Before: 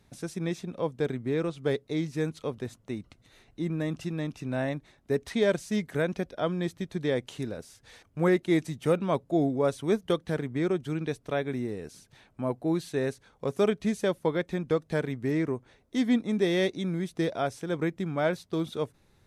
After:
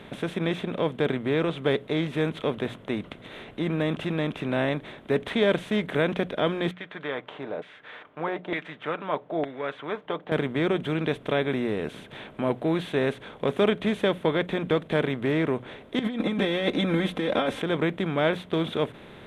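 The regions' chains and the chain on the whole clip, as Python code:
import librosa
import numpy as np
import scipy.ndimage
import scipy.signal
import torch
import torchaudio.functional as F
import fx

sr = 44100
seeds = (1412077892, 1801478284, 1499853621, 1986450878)

y = fx.chain(x, sr, fx.filter_lfo_bandpass(shape='saw_down', hz=1.1, low_hz=650.0, high_hz=2100.0, q=2.3),
    fx.lowpass(hz=5400.0, slope=12),
    fx.comb(ms=6.7, depth=0.39), at=(6.71, 10.32))
y = fx.chain(y, sr, fx.comb(ms=3.8, depth=0.99),
    fx.over_compress(threshold_db=-30.0, ratio=-1.0), at=(15.99, 17.62))
y = fx.bin_compress(y, sr, power=0.6)
y = fx.high_shelf_res(y, sr, hz=4100.0, db=-9.0, q=3.0)
y = fx.hum_notches(y, sr, base_hz=60, count=3)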